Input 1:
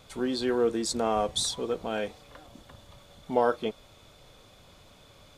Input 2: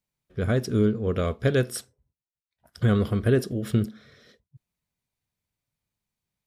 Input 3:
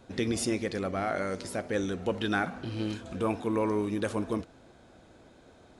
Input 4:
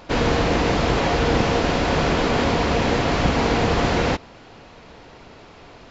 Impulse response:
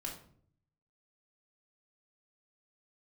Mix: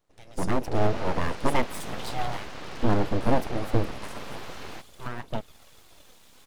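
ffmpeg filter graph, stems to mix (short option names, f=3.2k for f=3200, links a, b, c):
-filter_complex "[0:a]acrossover=split=440[a][b];[b]acompressor=threshold=-38dB:ratio=4[c];[a][c]amix=inputs=2:normalize=0,aphaser=in_gain=1:out_gain=1:delay=4.6:decay=0.65:speed=0.55:type=triangular,adelay=1700,volume=-2dB,asplit=3[d][e][f];[d]atrim=end=2.37,asetpts=PTS-STARTPTS,afade=t=out:st=2.366:d=0.004:c=hsin[g];[e]atrim=start=2.37:end=4.16,asetpts=PTS-STARTPTS,volume=0[h];[f]atrim=start=4.16,asetpts=PTS-STARTPTS,afade=t=in:d=0.004:c=hsin[i];[g][h][i]concat=n=3:v=0:a=1[j];[1:a]afwtdn=0.0282,volume=2dB[k];[2:a]dynaudnorm=f=110:g=11:m=11dB,volume=-19dB[l];[3:a]lowpass=5k,adelay=650,volume=-17.5dB[m];[j][k][l][m]amix=inputs=4:normalize=0,highshelf=f=7.1k:g=11.5,aeval=exprs='abs(val(0))':c=same"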